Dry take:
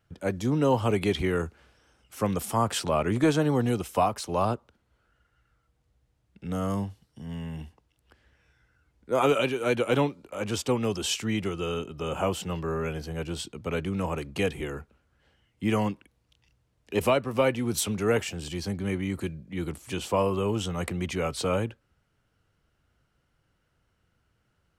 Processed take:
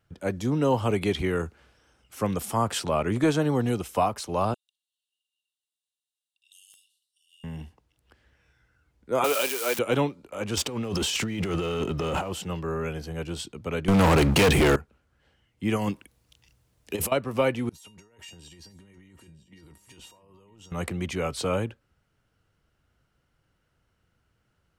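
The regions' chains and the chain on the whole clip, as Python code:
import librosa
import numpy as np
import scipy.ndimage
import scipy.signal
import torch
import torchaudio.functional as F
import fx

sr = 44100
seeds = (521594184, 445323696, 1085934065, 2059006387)

y = fx.chain(x, sr, fx.cheby_ripple_highpass(hz=2700.0, ripple_db=9),
    fx.overflow_wrap(gain_db=38.5), at=(4.54, 7.44))
y = fx.chain(y, sr, fx.crossing_spikes(level_db=-19.0),
    fx.highpass(hz=440.0, slope=12), at=(9.24, 9.79))
y = fx.chain(y, sr, fx.high_shelf(hz=6900.0, db=-5.0),
    fx.over_compress(threshold_db=-35.0, ratio=-1.0),
    fx.leveller(passes=2), at=(10.57, 12.33))
y = fx.chain(y, sr, fx.leveller(passes=5),
    fx.env_flatten(amount_pct=50), at=(13.88, 14.76))
y = fx.chain(y, sr, fx.high_shelf(hz=5900.0, db=10.5),
    fx.over_compress(threshold_db=-27.0, ratio=-0.5), at=(15.76, 17.12))
y = fx.chain(y, sr, fx.over_compress(threshold_db=-35.0, ratio=-1.0),
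    fx.comb_fb(f0_hz=930.0, decay_s=0.21, harmonics='all', damping=0.0, mix_pct=90),
    fx.echo_single(ms=953, db=-17.5), at=(17.69, 20.72))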